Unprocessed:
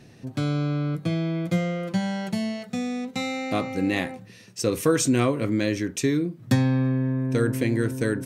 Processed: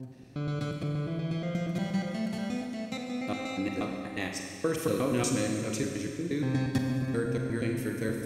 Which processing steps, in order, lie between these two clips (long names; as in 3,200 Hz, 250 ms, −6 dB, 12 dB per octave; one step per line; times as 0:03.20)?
slices reordered back to front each 119 ms, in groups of 3
four-comb reverb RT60 2.2 s, combs from 32 ms, DRR 2 dB
level −8 dB